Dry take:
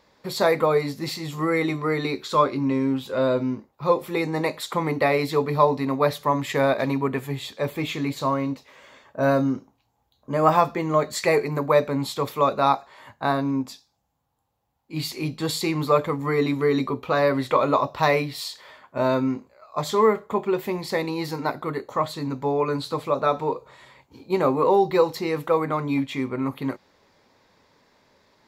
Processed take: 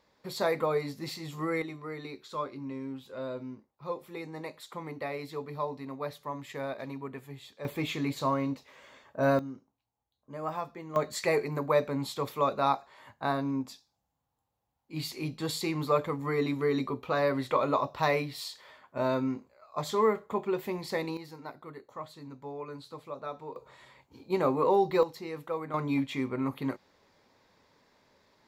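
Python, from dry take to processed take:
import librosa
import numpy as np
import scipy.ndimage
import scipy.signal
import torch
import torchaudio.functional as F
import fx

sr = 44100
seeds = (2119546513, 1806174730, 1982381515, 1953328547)

y = fx.gain(x, sr, db=fx.steps((0.0, -8.5), (1.62, -15.5), (7.65, -5.0), (9.39, -17.0), (10.96, -7.0), (21.17, -17.0), (23.56, -6.0), (25.03, -13.0), (25.74, -5.0)))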